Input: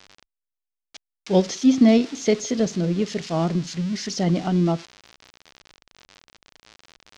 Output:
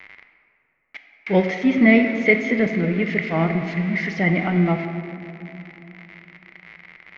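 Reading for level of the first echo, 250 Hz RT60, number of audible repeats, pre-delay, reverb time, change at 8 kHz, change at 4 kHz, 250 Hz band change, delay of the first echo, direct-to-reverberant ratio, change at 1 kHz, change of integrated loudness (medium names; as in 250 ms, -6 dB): no echo, 3.7 s, no echo, 5 ms, 2.8 s, no reading, -5.0 dB, +1.0 dB, no echo, 6.0 dB, +3.0 dB, +2.0 dB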